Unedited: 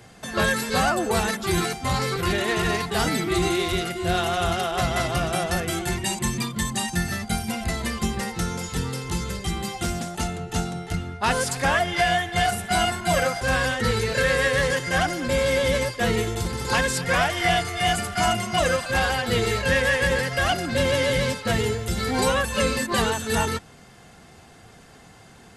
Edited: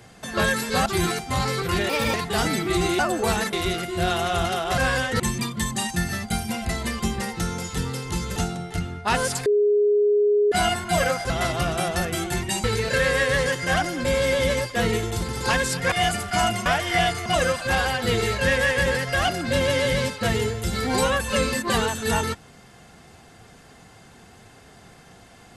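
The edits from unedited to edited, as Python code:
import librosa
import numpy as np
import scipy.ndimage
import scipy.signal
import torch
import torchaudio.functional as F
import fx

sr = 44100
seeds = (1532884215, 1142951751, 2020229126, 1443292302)

y = fx.edit(x, sr, fx.move(start_s=0.86, length_s=0.54, to_s=3.6),
    fx.speed_span(start_s=2.43, length_s=0.32, speed=1.29),
    fx.swap(start_s=4.85, length_s=1.34, other_s=13.46, other_length_s=0.42),
    fx.cut(start_s=9.35, length_s=1.17),
    fx.bleep(start_s=11.62, length_s=1.06, hz=414.0, db=-15.5),
    fx.move(start_s=17.16, length_s=0.6, to_s=18.5), tone=tone)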